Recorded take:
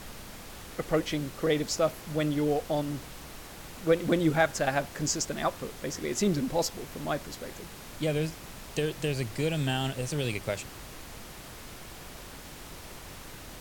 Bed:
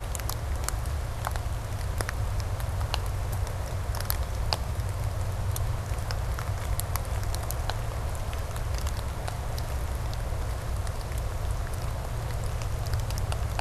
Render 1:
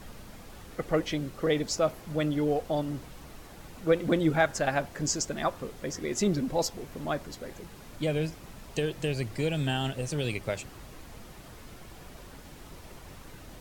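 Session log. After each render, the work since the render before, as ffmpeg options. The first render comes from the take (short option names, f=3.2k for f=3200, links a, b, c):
-af "afftdn=nr=7:nf=-45"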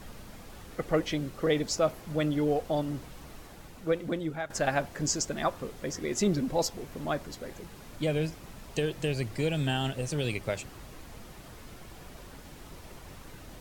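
-filter_complex "[0:a]asplit=2[a][b];[a]atrim=end=4.5,asetpts=PTS-STARTPTS,afade=t=out:st=3.39:d=1.11:silence=0.211349[c];[b]atrim=start=4.5,asetpts=PTS-STARTPTS,afade=t=in:d=0.004:c=hsin:silence=0.211349[d];[c][d]concat=n=2:v=0:a=1"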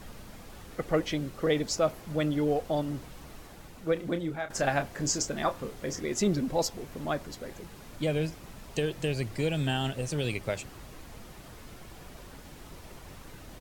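-filter_complex "[0:a]asplit=3[a][b][c];[a]afade=t=out:st=3.95:d=0.02[d];[b]asplit=2[e][f];[f]adelay=29,volume=-9dB[g];[e][g]amix=inputs=2:normalize=0,afade=t=in:st=3.95:d=0.02,afade=t=out:st=6.01:d=0.02[h];[c]afade=t=in:st=6.01:d=0.02[i];[d][h][i]amix=inputs=3:normalize=0"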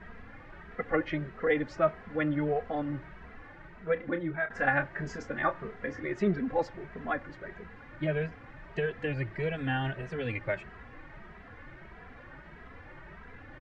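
-filter_complex "[0:a]lowpass=f=1.8k:t=q:w=3.3,asplit=2[a][b];[b]adelay=2.7,afreqshift=1.6[c];[a][c]amix=inputs=2:normalize=1"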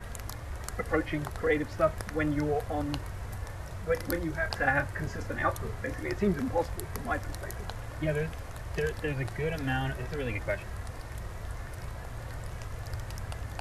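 -filter_complex "[1:a]volume=-8.5dB[a];[0:a][a]amix=inputs=2:normalize=0"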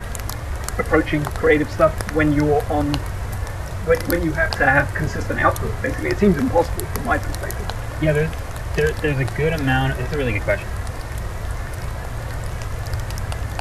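-af "volume=12dB,alimiter=limit=-3dB:level=0:latency=1"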